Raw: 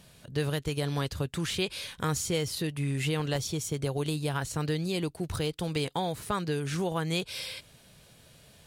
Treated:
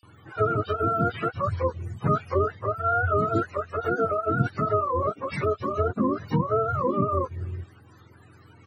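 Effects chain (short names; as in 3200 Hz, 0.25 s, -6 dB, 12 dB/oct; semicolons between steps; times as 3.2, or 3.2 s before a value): spectrum mirrored in octaves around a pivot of 440 Hz; bands offset in time highs, lows 30 ms, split 3500 Hz; gain +8 dB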